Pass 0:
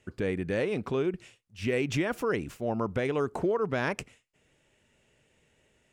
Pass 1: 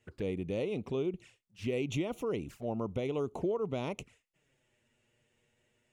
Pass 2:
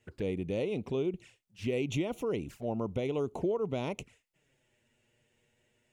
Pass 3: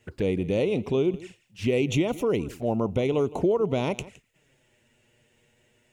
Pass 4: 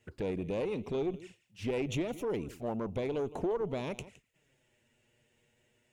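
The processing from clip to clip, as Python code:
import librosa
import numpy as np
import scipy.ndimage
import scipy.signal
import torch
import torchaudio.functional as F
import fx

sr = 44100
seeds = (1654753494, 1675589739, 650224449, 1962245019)

y1 = fx.env_flanger(x, sr, rest_ms=8.9, full_db=-29.0)
y1 = y1 * librosa.db_to_amplitude(-4.0)
y2 = fx.peak_eq(y1, sr, hz=1200.0, db=-4.5, octaves=0.23)
y2 = y2 * librosa.db_to_amplitude(1.5)
y3 = y2 + 10.0 ** (-19.0 / 20.0) * np.pad(y2, (int(164 * sr / 1000.0), 0))[:len(y2)]
y3 = y3 * librosa.db_to_amplitude(8.0)
y4 = fx.diode_clip(y3, sr, knee_db=-22.5)
y4 = y4 * librosa.db_to_amplitude(-7.0)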